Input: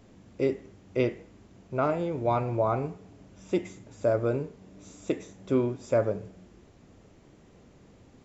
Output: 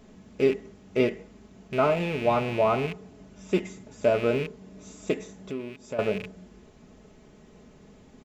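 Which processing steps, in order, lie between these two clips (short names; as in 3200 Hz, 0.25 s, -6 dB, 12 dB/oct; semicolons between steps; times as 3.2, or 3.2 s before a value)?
rattling part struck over -39 dBFS, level -28 dBFS; comb 4.7 ms, depth 55%; 5.33–5.99 compressor 2:1, threshold -44 dBFS, peak gain reduction 14.5 dB; gain +2 dB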